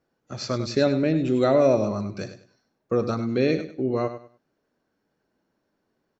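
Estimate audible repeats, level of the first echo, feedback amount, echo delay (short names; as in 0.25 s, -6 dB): 2, -11.0 dB, 25%, 99 ms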